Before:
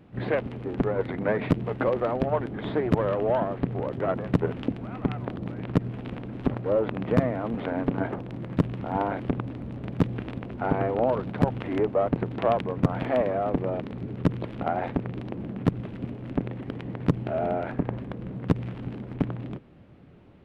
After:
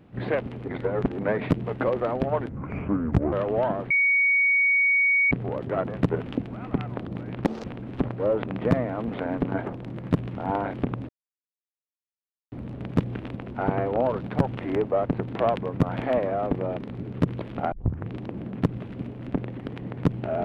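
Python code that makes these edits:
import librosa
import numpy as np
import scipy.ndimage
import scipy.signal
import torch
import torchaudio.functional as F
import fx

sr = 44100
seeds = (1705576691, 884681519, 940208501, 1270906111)

y = fx.edit(x, sr, fx.reverse_span(start_s=0.68, length_s=0.5),
    fx.speed_span(start_s=2.49, length_s=0.55, speed=0.66),
    fx.insert_tone(at_s=3.62, length_s=1.41, hz=2240.0, db=-17.5),
    fx.speed_span(start_s=5.76, length_s=0.34, speed=1.83),
    fx.insert_silence(at_s=9.55, length_s=1.43),
    fx.tape_start(start_s=14.75, length_s=0.37), tone=tone)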